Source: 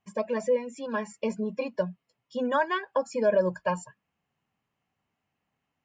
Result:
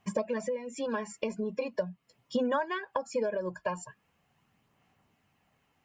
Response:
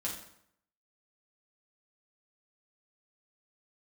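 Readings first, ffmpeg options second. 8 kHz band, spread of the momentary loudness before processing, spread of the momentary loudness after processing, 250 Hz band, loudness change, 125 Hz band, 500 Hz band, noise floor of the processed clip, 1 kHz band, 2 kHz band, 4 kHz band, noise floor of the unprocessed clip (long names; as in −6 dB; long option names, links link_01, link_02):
+0.5 dB, 8 LU, 7 LU, −2.5 dB, −4.5 dB, −5.0 dB, −5.0 dB, −74 dBFS, −5.0 dB, −5.0 dB, −2.0 dB, −83 dBFS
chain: -af "acompressor=threshold=-39dB:ratio=6,aphaser=in_gain=1:out_gain=1:delay=2.9:decay=0.26:speed=0.41:type=sinusoidal,volume=9dB"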